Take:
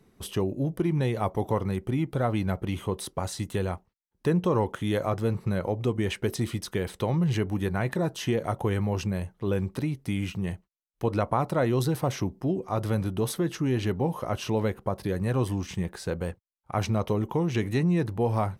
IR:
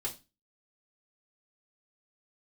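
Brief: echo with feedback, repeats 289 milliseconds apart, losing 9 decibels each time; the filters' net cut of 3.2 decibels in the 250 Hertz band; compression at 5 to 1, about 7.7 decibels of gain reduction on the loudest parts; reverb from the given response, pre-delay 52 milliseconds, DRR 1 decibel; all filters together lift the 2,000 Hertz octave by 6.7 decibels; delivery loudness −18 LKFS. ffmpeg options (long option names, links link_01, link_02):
-filter_complex "[0:a]equalizer=frequency=250:width_type=o:gain=-5,equalizer=frequency=2000:width_type=o:gain=8.5,acompressor=threshold=-30dB:ratio=5,aecho=1:1:289|578|867|1156:0.355|0.124|0.0435|0.0152,asplit=2[link_01][link_02];[1:a]atrim=start_sample=2205,adelay=52[link_03];[link_02][link_03]afir=irnorm=-1:irlink=0,volume=-2.5dB[link_04];[link_01][link_04]amix=inputs=2:normalize=0,volume=13dB"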